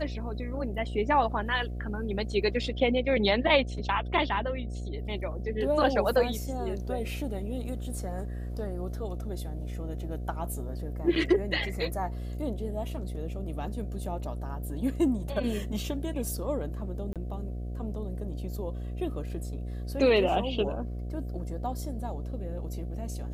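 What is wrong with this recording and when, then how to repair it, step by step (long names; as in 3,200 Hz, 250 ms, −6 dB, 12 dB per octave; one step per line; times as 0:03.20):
mains buzz 60 Hz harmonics 12 −35 dBFS
0:17.13–0:17.16: drop-out 27 ms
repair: hum removal 60 Hz, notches 12
repair the gap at 0:17.13, 27 ms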